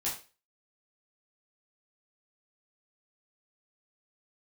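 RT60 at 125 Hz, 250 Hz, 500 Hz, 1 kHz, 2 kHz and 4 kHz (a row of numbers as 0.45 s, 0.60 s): 0.30 s, 0.30 s, 0.35 s, 0.30 s, 0.35 s, 0.35 s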